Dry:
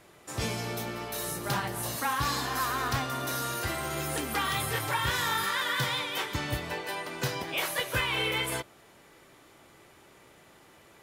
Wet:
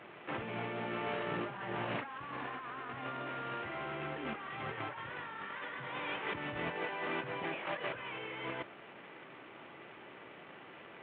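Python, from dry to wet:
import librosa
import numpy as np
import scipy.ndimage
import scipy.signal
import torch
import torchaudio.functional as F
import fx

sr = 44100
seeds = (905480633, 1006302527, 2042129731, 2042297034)

y = fx.cvsd(x, sr, bps=16000)
y = scipy.signal.sosfilt(scipy.signal.butter(2, 160.0, 'highpass', fs=sr, output='sos'), y)
y = fx.over_compress(y, sr, threshold_db=-40.0, ratio=-1.0)
y = y * librosa.db_to_amplitude(-1.0)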